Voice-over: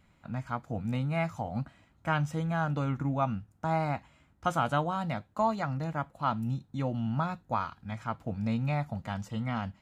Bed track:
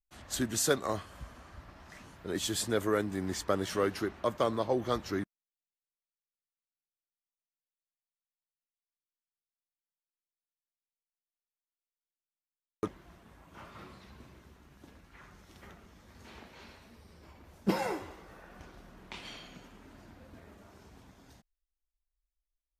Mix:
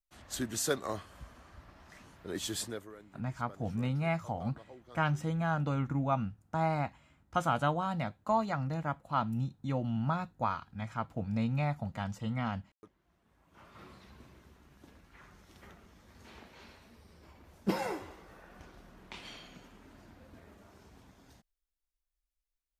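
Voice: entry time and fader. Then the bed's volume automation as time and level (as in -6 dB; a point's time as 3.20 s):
2.90 s, -1.5 dB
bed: 2.63 s -3.5 dB
2.95 s -23 dB
12.82 s -23 dB
13.89 s -2 dB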